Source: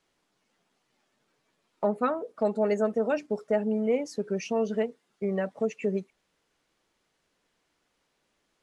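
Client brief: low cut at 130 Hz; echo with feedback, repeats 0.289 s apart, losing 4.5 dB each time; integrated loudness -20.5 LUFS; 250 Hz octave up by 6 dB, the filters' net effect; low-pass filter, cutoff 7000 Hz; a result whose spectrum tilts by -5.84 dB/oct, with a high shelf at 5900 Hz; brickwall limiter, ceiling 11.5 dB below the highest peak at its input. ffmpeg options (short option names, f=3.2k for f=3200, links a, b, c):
-af "highpass=130,lowpass=7k,equalizer=f=250:t=o:g=8,highshelf=f=5.9k:g=-8,alimiter=limit=-22.5dB:level=0:latency=1,aecho=1:1:289|578|867|1156|1445|1734|2023|2312|2601:0.596|0.357|0.214|0.129|0.0772|0.0463|0.0278|0.0167|0.01,volume=10.5dB"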